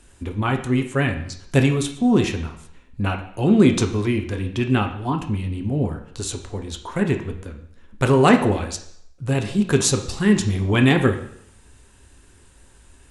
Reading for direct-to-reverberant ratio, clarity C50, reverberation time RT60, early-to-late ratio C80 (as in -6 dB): 4.5 dB, 9.5 dB, 0.70 s, 12.5 dB